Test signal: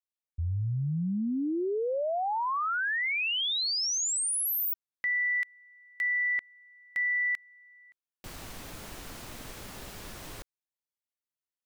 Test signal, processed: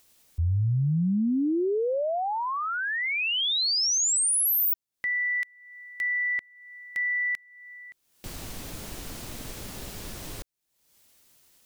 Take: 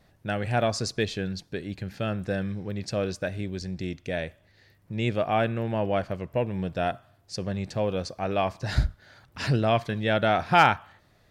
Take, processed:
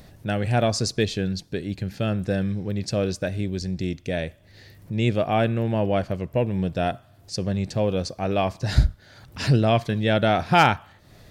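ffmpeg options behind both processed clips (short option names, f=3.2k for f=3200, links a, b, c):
-af "equalizer=f=1.3k:t=o:w=2.4:g=-6,acompressor=mode=upward:threshold=-41dB:ratio=2.5:attack=0.49:release=347:knee=2.83:detection=peak,volume=6dB"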